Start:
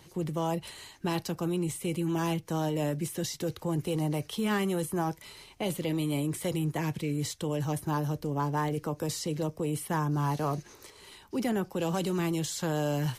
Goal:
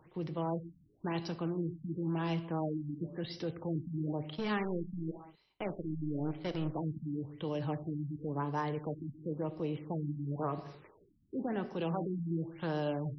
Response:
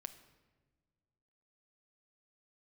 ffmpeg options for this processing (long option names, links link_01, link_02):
-filter_complex "[0:a]lowshelf=frequency=120:gain=-6.5,asettb=1/sr,asplit=3[link_01][link_02][link_03];[link_01]atrim=end=4.304[link_04];[link_02]atrim=start=4.3:end=6.68,asetpts=PTS-STARTPTS,afade=type=in:duration=0.004:curve=qsin,afade=type=out:start_time=2.376:duration=0.004:curve=qsin,aeval=exprs='0.0944*(cos(1*acos(clip(val(0)/0.0944,-1,1)))-cos(1*PI/2))+0.0119*(cos(7*acos(clip(val(0)/0.0944,-1,1)))-cos(7*PI/2))':channel_layout=same[link_05];[link_03]atrim=start=6.676[link_06];[link_04][link_05]acrossfade=duration=0.004:curve1=hsin:curve2=qsin[link_07];[link_07][link_06]acrossfade=duration=0.004:curve1=qsin:curve2=hsin[link_08];[1:a]atrim=start_sample=2205,afade=type=out:start_time=0.29:duration=0.01,atrim=end_sample=13230[link_09];[link_08][link_09]afir=irnorm=-1:irlink=0,afftfilt=real='re*lt(b*sr/1024,290*pow(6000/290,0.5+0.5*sin(2*PI*0.96*pts/sr)))':imag='im*lt(b*sr/1024,290*pow(6000/290,0.5+0.5*sin(2*PI*0.96*pts/sr)))':win_size=1024:overlap=0.75"